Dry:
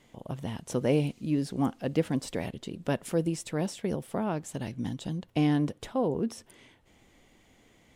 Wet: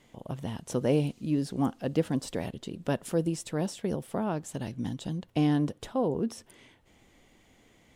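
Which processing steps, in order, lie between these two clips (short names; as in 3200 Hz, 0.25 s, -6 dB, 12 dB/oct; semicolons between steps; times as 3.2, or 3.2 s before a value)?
dynamic EQ 2200 Hz, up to -5 dB, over -56 dBFS, Q 3.3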